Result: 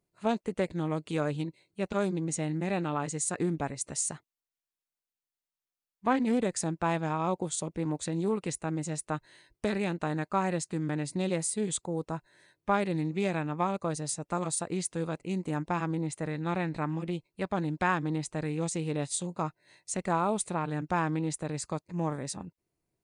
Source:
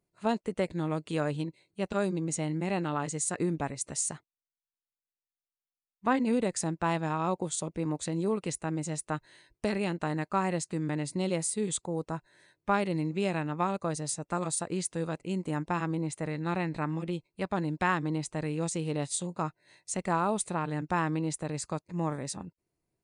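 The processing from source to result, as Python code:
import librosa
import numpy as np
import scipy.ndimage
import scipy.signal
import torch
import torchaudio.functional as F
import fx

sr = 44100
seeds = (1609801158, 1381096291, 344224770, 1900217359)

y = fx.doppler_dist(x, sr, depth_ms=0.11)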